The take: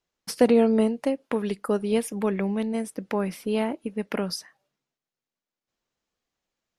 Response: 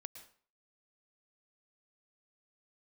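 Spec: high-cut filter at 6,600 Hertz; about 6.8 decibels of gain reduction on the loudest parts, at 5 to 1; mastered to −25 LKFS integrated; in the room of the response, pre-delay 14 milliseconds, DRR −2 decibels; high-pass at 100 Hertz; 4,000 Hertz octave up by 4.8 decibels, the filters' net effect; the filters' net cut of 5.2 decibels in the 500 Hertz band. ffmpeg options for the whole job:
-filter_complex "[0:a]highpass=100,lowpass=6600,equalizer=frequency=500:width_type=o:gain=-6,equalizer=frequency=4000:width_type=o:gain=8,acompressor=threshold=-24dB:ratio=5,asplit=2[link_01][link_02];[1:a]atrim=start_sample=2205,adelay=14[link_03];[link_02][link_03]afir=irnorm=-1:irlink=0,volume=7dB[link_04];[link_01][link_04]amix=inputs=2:normalize=0,volume=1dB"

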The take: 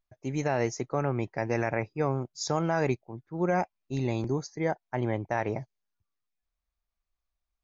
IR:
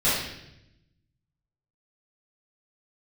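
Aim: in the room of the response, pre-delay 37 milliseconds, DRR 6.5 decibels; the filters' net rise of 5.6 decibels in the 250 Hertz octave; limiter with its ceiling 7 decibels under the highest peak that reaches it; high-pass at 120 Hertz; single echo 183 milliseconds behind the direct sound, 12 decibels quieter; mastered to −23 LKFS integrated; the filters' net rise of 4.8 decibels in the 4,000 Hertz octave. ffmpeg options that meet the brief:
-filter_complex "[0:a]highpass=120,equalizer=frequency=250:width_type=o:gain=8,equalizer=frequency=4000:width_type=o:gain=6.5,alimiter=limit=-18.5dB:level=0:latency=1,aecho=1:1:183:0.251,asplit=2[link_01][link_02];[1:a]atrim=start_sample=2205,adelay=37[link_03];[link_02][link_03]afir=irnorm=-1:irlink=0,volume=-21.5dB[link_04];[link_01][link_04]amix=inputs=2:normalize=0,volume=6dB"

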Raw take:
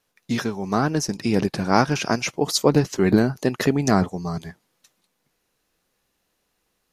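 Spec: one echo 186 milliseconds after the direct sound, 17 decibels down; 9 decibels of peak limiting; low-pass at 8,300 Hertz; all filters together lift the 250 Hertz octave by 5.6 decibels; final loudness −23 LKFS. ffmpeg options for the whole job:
ffmpeg -i in.wav -af "lowpass=8300,equalizer=frequency=250:width_type=o:gain=7,alimiter=limit=-8.5dB:level=0:latency=1,aecho=1:1:186:0.141,volume=-2dB" out.wav

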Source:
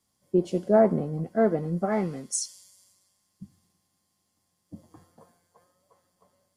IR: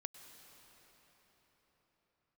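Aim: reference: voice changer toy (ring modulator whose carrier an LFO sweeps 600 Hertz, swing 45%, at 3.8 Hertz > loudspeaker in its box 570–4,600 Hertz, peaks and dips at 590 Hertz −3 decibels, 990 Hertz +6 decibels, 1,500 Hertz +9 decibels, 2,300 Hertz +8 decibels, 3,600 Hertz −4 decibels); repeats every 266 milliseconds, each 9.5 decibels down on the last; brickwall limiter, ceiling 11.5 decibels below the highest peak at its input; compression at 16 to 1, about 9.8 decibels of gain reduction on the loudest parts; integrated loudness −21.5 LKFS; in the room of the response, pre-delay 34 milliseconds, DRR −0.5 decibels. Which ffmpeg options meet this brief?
-filter_complex "[0:a]acompressor=threshold=-23dB:ratio=16,alimiter=level_in=3dB:limit=-24dB:level=0:latency=1,volume=-3dB,aecho=1:1:266|532|798|1064:0.335|0.111|0.0365|0.012,asplit=2[link_01][link_02];[1:a]atrim=start_sample=2205,adelay=34[link_03];[link_02][link_03]afir=irnorm=-1:irlink=0,volume=4.5dB[link_04];[link_01][link_04]amix=inputs=2:normalize=0,aeval=exprs='val(0)*sin(2*PI*600*n/s+600*0.45/3.8*sin(2*PI*3.8*n/s))':channel_layout=same,highpass=570,equalizer=frequency=590:width_type=q:width=4:gain=-3,equalizer=frequency=990:width_type=q:width=4:gain=6,equalizer=frequency=1500:width_type=q:width=4:gain=9,equalizer=frequency=2300:width_type=q:width=4:gain=8,equalizer=frequency=3600:width_type=q:width=4:gain=-4,lowpass=frequency=4600:width=0.5412,lowpass=frequency=4600:width=1.3066,volume=14dB"

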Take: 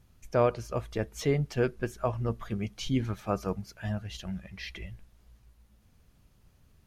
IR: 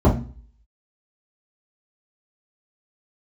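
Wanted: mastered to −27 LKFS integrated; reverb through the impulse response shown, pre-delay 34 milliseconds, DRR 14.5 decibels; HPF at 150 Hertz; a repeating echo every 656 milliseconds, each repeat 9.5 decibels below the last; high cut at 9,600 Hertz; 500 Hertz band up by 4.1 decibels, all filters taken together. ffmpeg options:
-filter_complex "[0:a]highpass=150,lowpass=9600,equalizer=frequency=500:width_type=o:gain=5,aecho=1:1:656|1312|1968|2624:0.335|0.111|0.0365|0.012,asplit=2[link_01][link_02];[1:a]atrim=start_sample=2205,adelay=34[link_03];[link_02][link_03]afir=irnorm=-1:irlink=0,volume=-35dB[link_04];[link_01][link_04]amix=inputs=2:normalize=0,volume=1.5dB"

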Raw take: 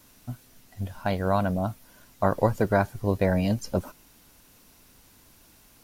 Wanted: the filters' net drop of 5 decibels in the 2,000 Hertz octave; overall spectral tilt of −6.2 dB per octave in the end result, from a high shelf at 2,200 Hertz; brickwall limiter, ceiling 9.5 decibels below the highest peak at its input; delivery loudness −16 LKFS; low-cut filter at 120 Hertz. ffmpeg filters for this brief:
ffmpeg -i in.wav -af "highpass=120,equalizer=frequency=2000:width_type=o:gain=-3,highshelf=frequency=2200:gain=-8.5,volume=15.5dB,alimiter=limit=-1.5dB:level=0:latency=1" out.wav

